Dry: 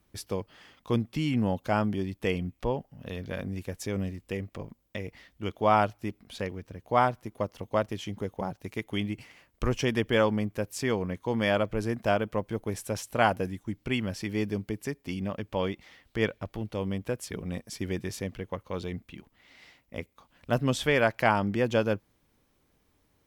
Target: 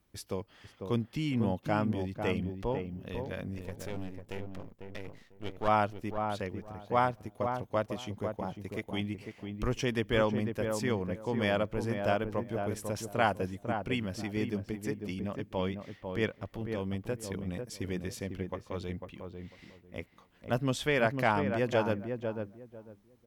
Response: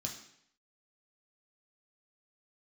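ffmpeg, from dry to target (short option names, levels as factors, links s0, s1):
-filter_complex "[0:a]asettb=1/sr,asplit=3[s0][s1][s2];[s0]atrim=end=3.584[s3];[s1]atrim=start=3.58:end=5.68,asetpts=PTS-STARTPTS,afade=t=in:d=0.004:c=qsin,afade=t=out:st=2.096:d=0.004:c=qsin,aeval=exprs='max(val(0),0)':c=same[s4];[s2]atrim=start=5.676[s5];[s3][s4]acrossfade=d=0.004:c1=hsin:c2=qsin[s6];[s6][s5]acrossfade=d=0.004:c1=qsin:c2=hsin,asplit=2[s7][s8];[s8]adelay=498,lowpass=f=1100:p=1,volume=0.562,asplit=2[s9][s10];[s10]adelay=498,lowpass=f=1100:p=1,volume=0.22,asplit=2[s11][s12];[s12]adelay=498,lowpass=f=1100:p=1,volume=0.22[s13];[s7][s9][s11][s13]amix=inputs=4:normalize=0,volume=0.631"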